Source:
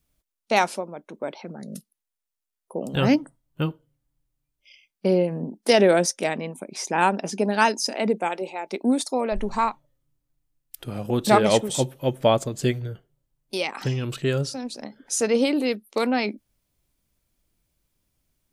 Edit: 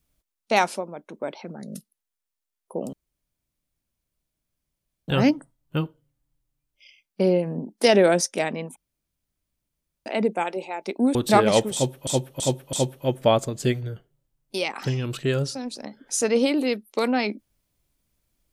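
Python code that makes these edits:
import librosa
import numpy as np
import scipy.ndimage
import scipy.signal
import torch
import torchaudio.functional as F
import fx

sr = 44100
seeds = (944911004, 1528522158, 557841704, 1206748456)

y = fx.edit(x, sr, fx.insert_room_tone(at_s=2.93, length_s=2.15),
    fx.room_tone_fill(start_s=6.61, length_s=1.3),
    fx.cut(start_s=9.0, length_s=2.13),
    fx.repeat(start_s=11.72, length_s=0.33, count=4), tone=tone)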